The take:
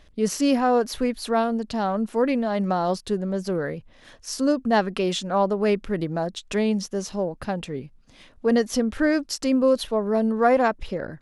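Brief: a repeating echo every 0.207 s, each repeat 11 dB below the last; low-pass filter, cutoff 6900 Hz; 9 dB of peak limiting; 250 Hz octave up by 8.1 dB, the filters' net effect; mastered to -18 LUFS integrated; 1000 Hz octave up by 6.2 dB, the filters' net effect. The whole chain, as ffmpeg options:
-af "lowpass=6.9k,equalizer=f=250:t=o:g=9,equalizer=f=1k:t=o:g=8,alimiter=limit=-11dB:level=0:latency=1,aecho=1:1:207|414|621:0.282|0.0789|0.0221,volume=2.5dB"

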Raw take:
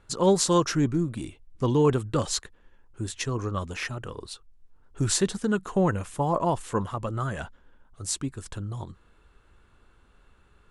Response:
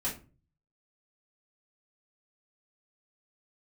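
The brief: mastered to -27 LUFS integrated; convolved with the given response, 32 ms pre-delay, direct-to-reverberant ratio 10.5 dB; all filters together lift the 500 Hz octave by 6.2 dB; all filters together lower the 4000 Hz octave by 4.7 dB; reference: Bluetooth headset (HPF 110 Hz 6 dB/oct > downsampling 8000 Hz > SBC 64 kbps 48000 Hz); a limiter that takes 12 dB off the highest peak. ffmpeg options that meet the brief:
-filter_complex "[0:a]equalizer=f=500:t=o:g=8,equalizer=f=4k:t=o:g=-6,alimiter=limit=-17dB:level=0:latency=1,asplit=2[a][b];[1:a]atrim=start_sample=2205,adelay=32[c];[b][c]afir=irnorm=-1:irlink=0,volume=-15dB[d];[a][d]amix=inputs=2:normalize=0,highpass=f=110:p=1,aresample=8000,aresample=44100,volume=2.5dB" -ar 48000 -c:a sbc -b:a 64k

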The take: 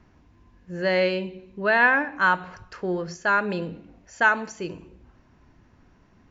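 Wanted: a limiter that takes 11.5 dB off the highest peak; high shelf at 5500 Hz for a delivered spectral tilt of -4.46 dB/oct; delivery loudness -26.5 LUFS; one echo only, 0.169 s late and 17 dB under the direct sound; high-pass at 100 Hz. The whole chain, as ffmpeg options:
-af "highpass=100,highshelf=f=5.5k:g=7.5,alimiter=limit=-17.5dB:level=0:latency=1,aecho=1:1:169:0.141,volume=2.5dB"

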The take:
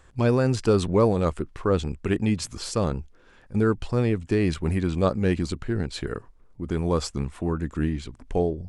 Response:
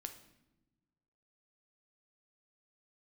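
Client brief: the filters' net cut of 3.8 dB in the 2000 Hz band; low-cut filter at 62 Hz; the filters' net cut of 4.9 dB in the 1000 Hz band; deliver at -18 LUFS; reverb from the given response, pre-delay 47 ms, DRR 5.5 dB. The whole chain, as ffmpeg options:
-filter_complex "[0:a]highpass=62,equalizer=f=1k:t=o:g=-5.5,equalizer=f=2k:t=o:g=-3,asplit=2[a][b];[1:a]atrim=start_sample=2205,adelay=47[c];[b][c]afir=irnorm=-1:irlink=0,volume=-2dB[d];[a][d]amix=inputs=2:normalize=0,volume=7dB"

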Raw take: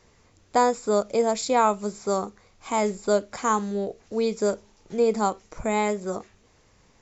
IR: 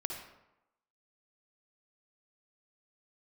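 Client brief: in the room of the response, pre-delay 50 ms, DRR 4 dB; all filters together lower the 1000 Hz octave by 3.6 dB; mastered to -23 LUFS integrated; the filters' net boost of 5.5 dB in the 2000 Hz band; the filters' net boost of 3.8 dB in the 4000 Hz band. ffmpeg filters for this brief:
-filter_complex "[0:a]equalizer=f=1k:t=o:g=-6.5,equalizer=f=2k:t=o:g=8,equalizer=f=4k:t=o:g=3,asplit=2[a][b];[1:a]atrim=start_sample=2205,adelay=50[c];[b][c]afir=irnorm=-1:irlink=0,volume=-5dB[d];[a][d]amix=inputs=2:normalize=0,volume=2dB"

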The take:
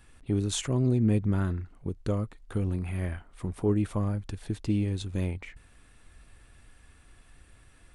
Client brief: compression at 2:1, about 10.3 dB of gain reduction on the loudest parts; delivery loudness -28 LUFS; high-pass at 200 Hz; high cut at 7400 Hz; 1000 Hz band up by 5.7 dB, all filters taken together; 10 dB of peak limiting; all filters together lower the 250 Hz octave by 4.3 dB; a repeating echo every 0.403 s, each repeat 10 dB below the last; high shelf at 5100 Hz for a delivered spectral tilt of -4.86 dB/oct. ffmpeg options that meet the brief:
-af "highpass=200,lowpass=7.4k,equalizer=f=250:t=o:g=-3.5,equalizer=f=1k:t=o:g=7,highshelf=f=5.1k:g=4.5,acompressor=threshold=-42dB:ratio=2,alimiter=level_in=9.5dB:limit=-24dB:level=0:latency=1,volume=-9.5dB,aecho=1:1:403|806|1209|1612:0.316|0.101|0.0324|0.0104,volume=17.5dB"

